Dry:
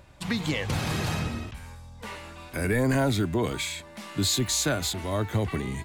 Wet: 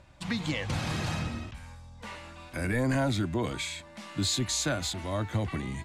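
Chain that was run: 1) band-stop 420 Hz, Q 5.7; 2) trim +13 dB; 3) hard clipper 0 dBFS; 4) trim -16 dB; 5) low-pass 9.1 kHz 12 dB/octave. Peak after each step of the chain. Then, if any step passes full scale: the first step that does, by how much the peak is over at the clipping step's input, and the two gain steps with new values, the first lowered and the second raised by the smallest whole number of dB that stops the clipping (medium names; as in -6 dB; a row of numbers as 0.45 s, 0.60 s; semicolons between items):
-15.0 dBFS, -2.0 dBFS, -2.0 dBFS, -18.0 dBFS, -18.0 dBFS; nothing clips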